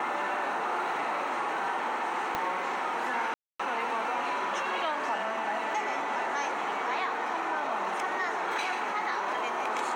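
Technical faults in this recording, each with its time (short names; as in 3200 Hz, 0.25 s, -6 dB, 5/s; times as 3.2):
2.35 pop -15 dBFS
3.34–3.6 gap 0.255 s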